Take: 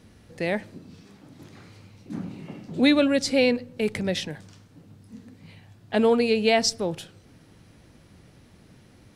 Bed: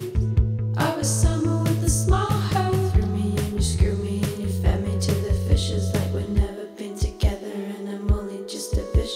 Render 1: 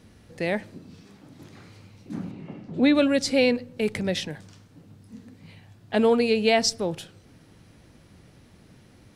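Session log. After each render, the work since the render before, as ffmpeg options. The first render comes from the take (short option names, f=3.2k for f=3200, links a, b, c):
-filter_complex "[0:a]asettb=1/sr,asplit=3[a][b][c];[a]atrim=end=2.314[d];[b]atrim=start=2.31:end=2.95,asetpts=PTS-STARTPTS,afade=t=in:d=0.004:c=qsin,afade=t=out:st=0.636:d=0.004:c=qsin,aemphasis=mode=reproduction:type=75kf[e];[c]atrim=start=2.946[f];[d][e]acrossfade=d=0.004:c1=hsin:c2=qsin[g];[g][f]acrossfade=d=0.004:c1=qsin:c2=hsin"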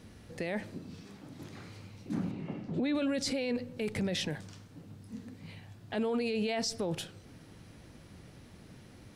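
-af "acompressor=threshold=-24dB:ratio=2,alimiter=level_in=0.5dB:limit=-24dB:level=0:latency=1:release=12,volume=-0.5dB"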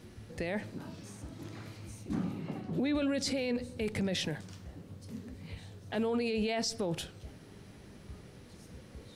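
-filter_complex "[1:a]volume=-29dB[a];[0:a][a]amix=inputs=2:normalize=0"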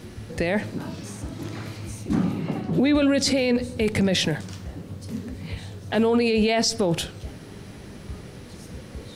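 -af "volume=11.5dB"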